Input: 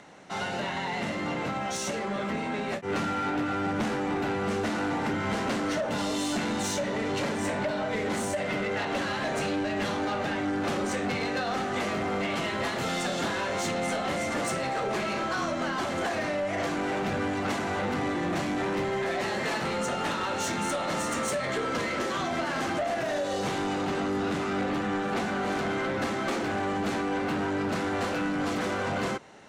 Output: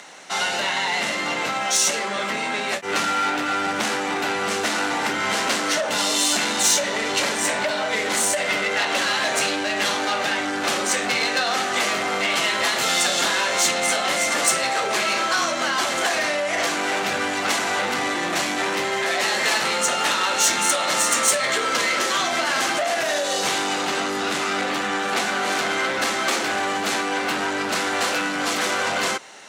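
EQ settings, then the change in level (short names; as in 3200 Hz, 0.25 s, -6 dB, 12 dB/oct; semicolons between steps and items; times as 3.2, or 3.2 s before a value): HPF 750 Hz 6 dB/oct; high shelf 2900 Hz +9.5 dB; +8.5 dB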